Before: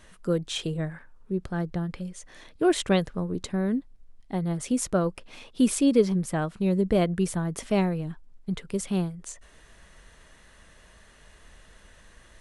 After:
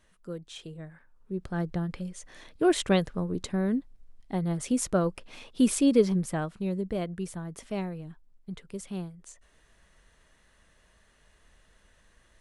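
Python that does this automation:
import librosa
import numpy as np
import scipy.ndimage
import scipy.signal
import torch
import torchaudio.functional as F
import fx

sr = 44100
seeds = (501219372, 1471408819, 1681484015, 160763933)

y = fx.gain(x, sr, db=fx.line((0.87, -12.5), (1.6, -1.0), (6.18, -1.0), (6.94, -9.0)))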